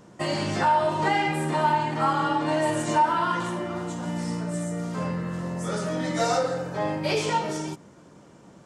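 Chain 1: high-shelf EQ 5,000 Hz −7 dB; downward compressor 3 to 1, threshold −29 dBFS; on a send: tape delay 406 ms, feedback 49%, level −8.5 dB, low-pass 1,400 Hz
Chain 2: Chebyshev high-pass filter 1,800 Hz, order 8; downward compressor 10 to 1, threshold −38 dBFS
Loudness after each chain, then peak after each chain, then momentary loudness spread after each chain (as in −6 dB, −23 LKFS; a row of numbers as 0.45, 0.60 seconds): −31.0, −41.0 LKFS; −18.0, −27.5 dBFS; 4, 6 LU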